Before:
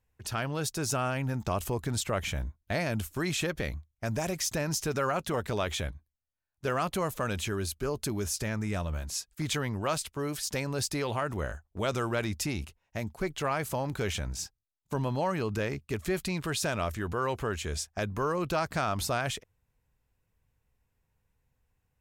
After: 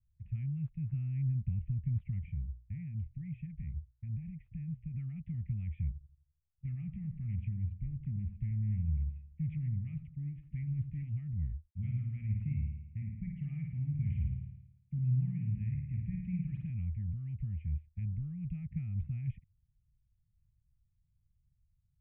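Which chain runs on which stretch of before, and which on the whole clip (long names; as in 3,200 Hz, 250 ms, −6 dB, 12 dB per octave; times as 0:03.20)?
0:02.18–0:04.94: downward compressor 1.5 to 1, threshold −38 dBFS + mains-hum notches 60/120 Hz
0:05.92–0:11.09: bucket-brigade delay 84 ms, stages 1,024, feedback 45%, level −11 dB + highs frequency-modulated by the lows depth 0.4 ms
0:11.70–0:16.70: high-pass filter 47 Hz + log-companded quantiser 6 bits + flutter between parallel walls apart 9.4 metres, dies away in 0.85 s
whole clip: inverse Chebyshev band-stop filter 350–1,600 Hz, stop band 50 dB; de-essing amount 50%; Butterworth low-pass 2,200 Hz 72 dB per octave; level +2 dB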